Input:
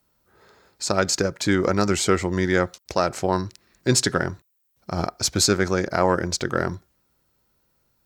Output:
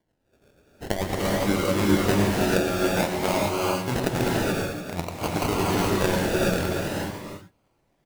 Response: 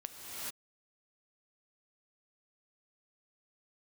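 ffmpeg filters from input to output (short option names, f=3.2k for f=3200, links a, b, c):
-filter_complex "[0:a]tremolo=f=8.6:d=0.5,aecho=1:1:115|291:0.299|0.398,acrusher=samples=34:mix=1:aa=0.000001:lfo=1:lforange=20.4:lforate=0.52[a];[1:a]atrim=start_sample=2205[b];[a][b]afir=irnorm=-1:irlink=0"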